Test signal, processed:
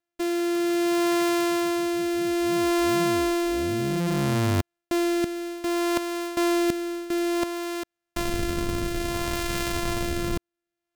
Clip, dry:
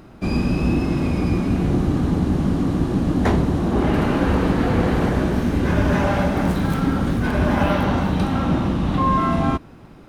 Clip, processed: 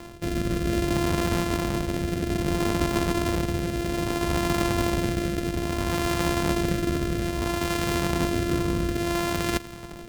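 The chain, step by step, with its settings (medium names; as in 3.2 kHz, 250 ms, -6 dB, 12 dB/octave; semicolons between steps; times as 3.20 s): sorted samples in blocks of 128 samples; reverse; compression 12:1, threshold -26 dBFS; reverse; rotary cabinet horn 0.6 Hz; trim +6 dB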